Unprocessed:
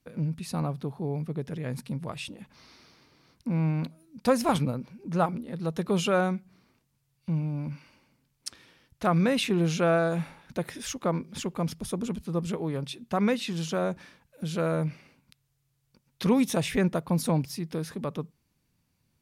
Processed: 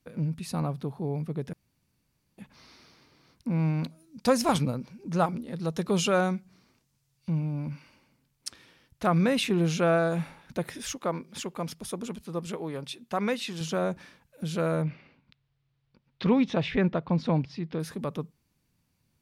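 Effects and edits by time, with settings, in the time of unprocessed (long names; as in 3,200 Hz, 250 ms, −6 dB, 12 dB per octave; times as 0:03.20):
0:01.53–0:02.38: fill with room tone
0:03.59–0:07.30: parametric band 5,900 Hz +5.5 dB 1.2 octaves
0:10.95–0:13.61: low-shelf EQ 220 Hz −10.5 dB
0:14.82–0:17.80: low-pass filter 4,100 Hz 24 dB per octave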